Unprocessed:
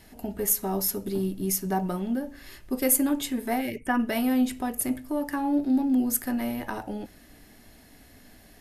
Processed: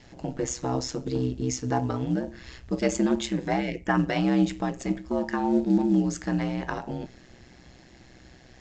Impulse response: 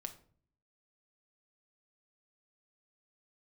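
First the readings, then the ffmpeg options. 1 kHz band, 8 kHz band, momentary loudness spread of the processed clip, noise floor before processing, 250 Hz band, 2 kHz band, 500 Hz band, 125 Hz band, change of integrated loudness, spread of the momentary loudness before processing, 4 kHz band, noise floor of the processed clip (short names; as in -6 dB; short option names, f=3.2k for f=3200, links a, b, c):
+0.5 dB, -7.0 dB, 11 LU, -53 dBFS, +0.5 dB, +1.5 dB, +2.5 dB, +8.5 dB, -0.5 dB, 12 LU, +1.5 dB, -53 dBFS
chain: -filter_complex "[0:a]aeval=exprs='val(0)*sin(2*PI*63*n/s)':c=same,asplit=2[a][b];[1:a]atrim=start_sample=2205[c];[b][c]afir=irnorm=-1:irlink=0,volume=-9.5dB[d];[a][d]amix=inputs=2:normalize=0,volume=2.5dB" -ar 16000 -c:a pcm_mulaw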